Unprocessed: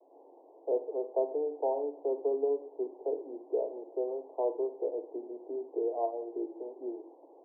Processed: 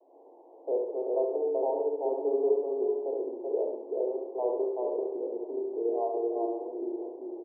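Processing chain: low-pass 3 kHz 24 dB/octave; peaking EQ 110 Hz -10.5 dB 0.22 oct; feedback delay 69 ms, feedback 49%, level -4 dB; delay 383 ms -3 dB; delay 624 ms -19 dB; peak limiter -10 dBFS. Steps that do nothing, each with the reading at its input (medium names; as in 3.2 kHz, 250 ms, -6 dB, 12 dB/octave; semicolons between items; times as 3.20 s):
low-pass 3 kHz: input has nothing above 1 kHz; peaking EQ 110 Hz: input has nothing below 240 Hz; peak limiter -10 dBFS: peak at its input -15.5 dBFS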